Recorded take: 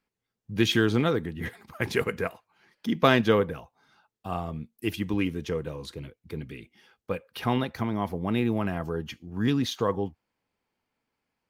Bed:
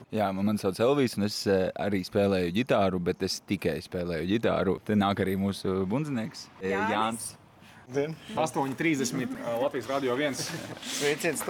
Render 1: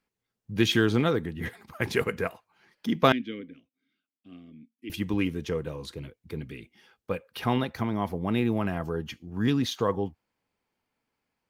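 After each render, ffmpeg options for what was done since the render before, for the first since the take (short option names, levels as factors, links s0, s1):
-filter_complex "[0:a]asettb=1/sr,asplit=3[s0][s1][s2];[s0]atrim=end=3.124[s3];[s1]atrim=start=3.12:end=4.9,asetpts=PTS-STARTPTS,afade=t=in:d=0.004:c=qsin,afade=t=out:st=1.776:d=0.004:c=qsin,asplit=3[s4][s5][s6];[s4]bandpass=f=270:t=q:w=8,volume=1[s7];[s5]bandpass=f=2290:t=q:w=8,volume=0.501[s8];[s6]bandpass=f=3010:t=q:w=8,volume=0.355[s9];[s7][s8][s9]amix=inputs=3:normalize=0[s10];[s2]atrim=start=4.896[s11];[s3][s10]acrossfade=d=0.004:c1=hsin:c2=qsin[s12];[s12][s11]acrossfade=d=0.004:c1=qsin:c2=hsin"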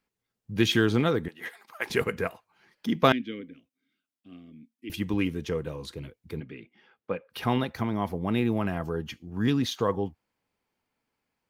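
-filter_complex "[0:a]asettb=1/sr,asplit=3[s0][s1][s2];[s0]atrim=end=1.284[s3];[s1]atrim=start=1.28:end=1.9,asetpts=PTS-STARTPTS,afade=t=in:d=0.004:c=qsin,afade=t=out:st=0.616:d=0.004:c=qsin,highpass=610[s4];[s2]atrim=start=1.896[s5];[s3][s4]acrossfade=d=0.004:c1=hsin:c2=qsin[s6];[s6][s5]acrossfade=d=0.004:c1=qsin:c2=hsin,asettb=1/sr,asplit=3[s7][s8][s9];[s7]atrim=end=6.404[s10];[s8]atrim=start=6.4:end=7.3,asetpts=PTS-STARTPTS,afade=t=in:d=0.004:c=qsin,afade=t=out:st=0.896:d=0.004:c=qsin,highpass=150,lowpass=2700[s11];[s9]atrim=start=7.296[s12];[s10][s11]acrossfade=d=0.004:c1=hsin:c2=qsin[s13];[s13][s12]acrossfade=d=0.004:c1=qsin:c2=hsin"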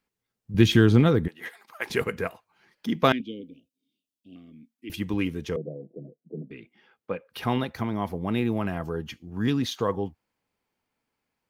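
-filter_complex "[0:a]asettb=1/sr,asplit=3[s0][s1][s2];[s0]atrim=end=0.544[s3];[s1]atrim=start=0.54:end=1.28,asetpts=PTS-STARTPTS,afade=t=in:d=0.004:c=qsin,afade=t=out:st=0.736:d=0.004:c=qsin,lowshelf=f=250:g=11.5[s4];[s2]atrim=start=1.276[s5];[s3][s4]acrossfade=d=0.004:c1=hsin:c2=qsin[s6];[s6][s5]acrossfade=d=0.004:c1=qsin:c2=hsin,asettb=1/sr,asplit=3[s7][s8][s9];[s7]atrim=end=3.204[s10];[s8]atrim=start=3.2:end=4.36,asetpts=PTS-STARTPTS,afade=t=in:d=0.004:c=qsin,afade=t=out:st=1.156:d=0.004:c=qsin,asuperstop=centerf=1300:order=12:qfactor=0.67[s11];[s9]atrim=start=4.356[s12];[s10][s11]acrossfade=d=0.004:c1=hsin:c2=qsin[s13];[s13][s12]acrossfade=d=0.004:c1=qsin:c2=hsin,asettb=1/sr,asplit=3[s14][s15][s16];[s14]atrim=end=5.564[s17];[s15]atrim=start=5.56:end=6.51,asetpts=PTS-STARTPTS,afade=t=in:d=0.004:c=qsin,afade=t=out:st=0.946:d=0.004:c=qsin,asuperpass=centerf=320:order=20:qfactor=0.56[s18];[s16]atrim=start=6.506[s19];[s17][s18]acrossfade=d=0.004:c1=hsin:c2=qsin[s20];[s20][s19]acrossfade=d=0.004:c1=qsin:c2=hsin"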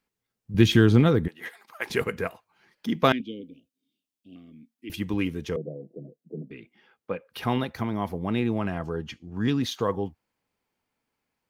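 -filter_complex "[0:a]asettb=1/sr,asplit=3[s0][s1][s2];[s0]atrim=end=8.274[s3];[s1]atrim=start=8.27:end=9.61,asetpts=PTS-STARTPTS,afade=t=in:d=0.004:c=qsin,afade=t=out:st=1.336:d=0.004:c=qsin,lowpass=8400[s4];[s2]atrim=start=9.606[s5];[s3][s4]acrossfade=d=0.004:c1=hsin:c2=qsin[s6];[s6][s5]acrossfade=d=0.004:c1=qsin:c2=hsin"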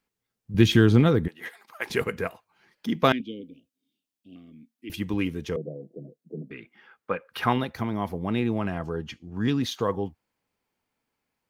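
-filter_complex "[0:a]asettb=1/sr,asplit=3[s0][s1][s2];[s0]atrim=end=6.494[s3];[s1]atrim=start=6.49:end=7.53,asetpts=PTS-STARTPTS,afade=t=in:d=0.004:c=qsin,afade=t=out:st=1.036:d=0.004:c=qsin,equalizer=f=1400:t=o:w=1.4:g=9.5[s4];[s2]atrim=start=7.526[s5];[s3][s4]acrossfade=d=0.004:c1=hsin:c2=qsin[s6];[s6][s5]acrossfade=d=0.004:c1=qsin:c2=hsin"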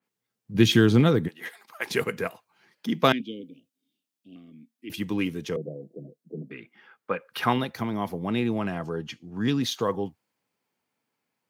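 -af "highpass=f=110:w=0.5412,highpass=f=110:w=1.3066,adynamicequalizer=threshold=0.00891:dfrequency=3000:dqfactor=0.7:tfrequency=3000:tqfactor=0.7:attack=5:release=100:ratio=0.375:range=2:mode=boostabove:tftype=highshelf"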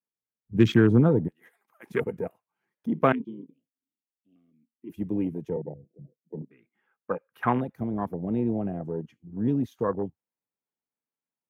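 -af "afwtdn=0.0398,equalizer=f=4400:w=1:g=-14"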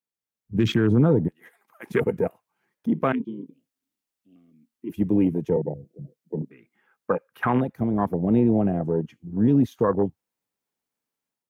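-af "dynaudnorm=f=240:g=3:m=2.51,alimiter=limit=0.299:level=0:latency=1:release=32"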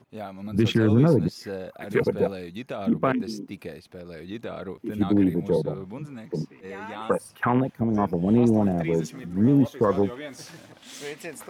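-filter_complex "[1:a]volume=0.355[s0];[0:a][s0]amix=inputs=2:normalize=0"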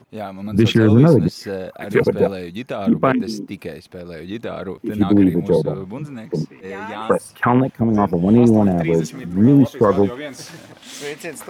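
-af "volume=2.24"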